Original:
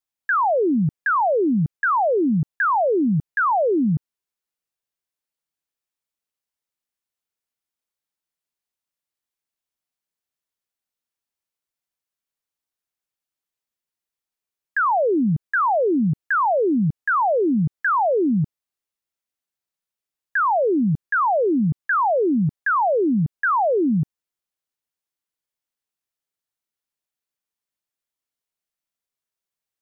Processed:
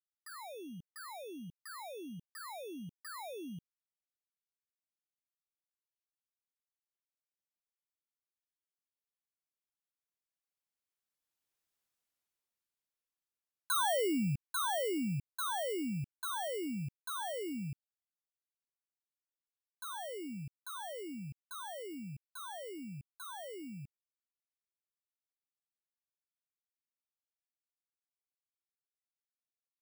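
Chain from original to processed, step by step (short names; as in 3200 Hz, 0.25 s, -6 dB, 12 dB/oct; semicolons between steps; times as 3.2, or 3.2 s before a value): FFT order left unsorted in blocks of 16 samples; Doppler pass-by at 11.74, 33 m/s, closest 15 m; gain +1 dB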